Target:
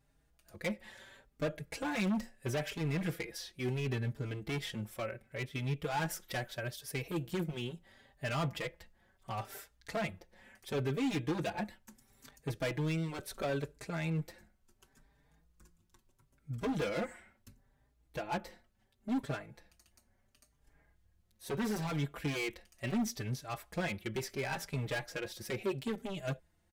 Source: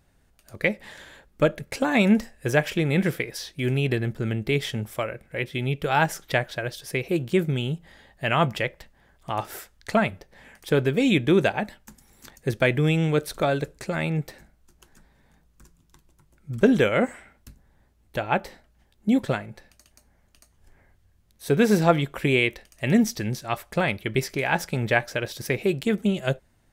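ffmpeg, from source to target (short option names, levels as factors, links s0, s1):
-filter_complex "[0:a]asettb=1/sr,asplit=3[s0][s1][s2];[s0]atrim=end=6.104[s3];[s1]atrim=start=6.1:end=7.4,asetpts=PTS-STARTPTS,afade=t=in:d=0.004:c=qsin,afade=t=out:st=1.296:d=0.004:c=qsin,highshelf=f=9800:g=8.5[s4];[s2]atrim=start=7.396[s5];[s3][s4]acrossfade=d=0.004:c1=hsin:c2=qsin[s6];[s6][s5]acrossfade=d=0.004:c1=qsin:c2=hsin,asoftclip=type=hard:threshold=0.0794,asplit=2[s7][s8];[s8]adelay=4.6,afreqshift=0.73[s9];[s7][s9]amix=inputs=2:normalize=1,volume=0.473"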